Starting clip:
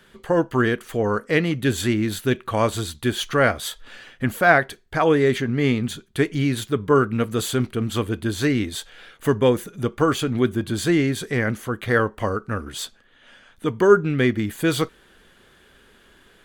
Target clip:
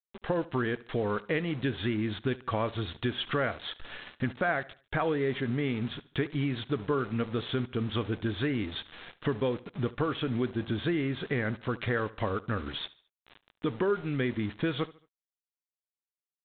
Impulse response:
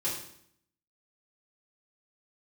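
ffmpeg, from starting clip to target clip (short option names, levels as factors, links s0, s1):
-af "acompressor=threshold=0.0398:ratio=4,aresample=8000,aeval=exprs='val(0)*gte(abs(val(0)),0.00841)':c=same,aresample=44100,aecho=1:1:73|146|219:0.1|0.039|0.0152"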